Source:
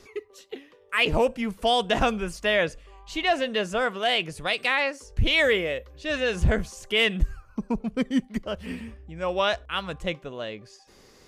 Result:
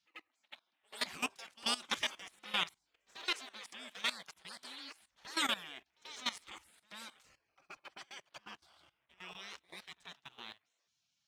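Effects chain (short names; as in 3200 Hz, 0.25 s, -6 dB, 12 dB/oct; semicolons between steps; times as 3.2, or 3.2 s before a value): HPF 490 Hz 12 dB/oct; low-pass opened by the level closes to 2800 Hz, open at -22 dBFS; spectral gate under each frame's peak -20 dB weak; sample leveller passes 1; level quantiser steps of 17 dB; reverse echo 87 ms -23.5 dB; gain +2 dB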